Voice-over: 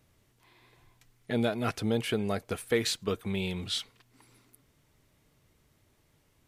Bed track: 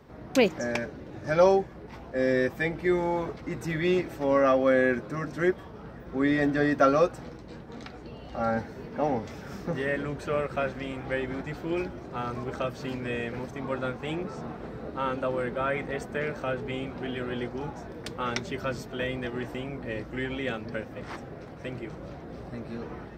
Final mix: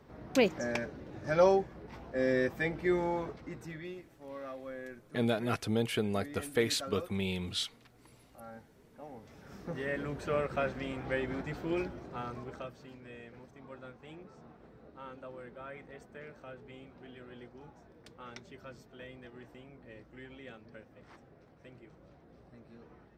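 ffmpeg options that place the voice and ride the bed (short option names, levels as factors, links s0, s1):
-filter_complex "[0:a]adelay=3850,volume=0.794[s0];[1:a]volume=4.73,afade=t=out:st=3.03:d=0.92:silence=0.141254,afade=t=in:st=9.12:d=1.19:silence=0.125893,afade=t=out:st=11.75:d=1.11:silence=0.199526[s1];[s0][s1]amix=inputs=2:normalize=0"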